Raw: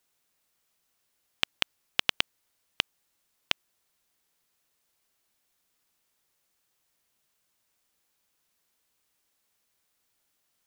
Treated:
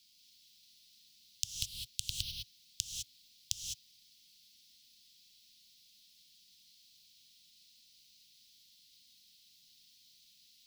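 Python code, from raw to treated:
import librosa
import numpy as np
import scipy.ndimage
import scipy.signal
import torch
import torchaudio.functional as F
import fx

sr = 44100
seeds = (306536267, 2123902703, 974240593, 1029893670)

y = fx.env_phaser(x, sr, low_hz=230.0, high_hz=1400.0, full_db=-38.0)
y = fx.dmg_noise_band(y, sr, seeds[0], low_hz=250.0, high_hz=3500.0, level_db=-55.0)
y = scipy.signal.sosfilt(scipy.signal.ellip(3, 1.0, 60, [120.0, 5000.0], 'bandstop', fs=sr, output='sos'), y)
y = fx.rev_gated(y, sr, seeds[1], gate_ms=230, shape='rising', drr_db=1.0)
y = F.gain(torch.from_numpy(y), 4.0).numpy()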